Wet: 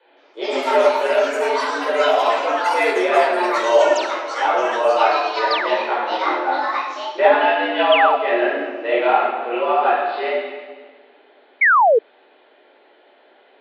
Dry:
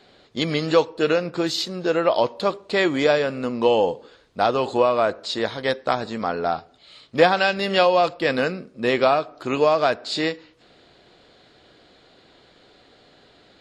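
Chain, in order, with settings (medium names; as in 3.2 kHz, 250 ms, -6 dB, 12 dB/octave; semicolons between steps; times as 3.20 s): mistuned SSB +100 Hz 180–3100 Hz; reverberation RT60 1.6 s, pre-delay 14 ms, DRR -7.5 dB; painted sound fall, 11.61–11.99 s, 420–2300 Hz -4 dBFS; ever faster or slower copies 168 ms, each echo +7 st, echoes 3, each echo -6 dB; trim -8.5 dB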